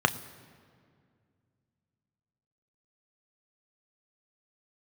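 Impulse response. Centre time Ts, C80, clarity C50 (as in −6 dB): 7 ms, 17.0 dB, 16.5 dB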